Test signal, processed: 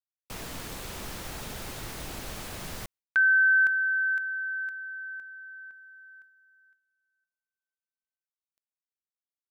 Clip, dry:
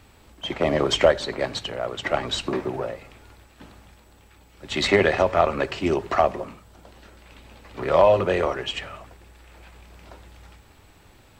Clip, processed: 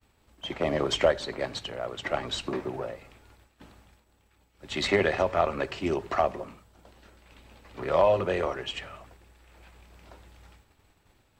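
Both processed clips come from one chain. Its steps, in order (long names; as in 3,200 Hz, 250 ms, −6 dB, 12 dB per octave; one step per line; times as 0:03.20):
downward expander −46 dBFS
level −5.5 dB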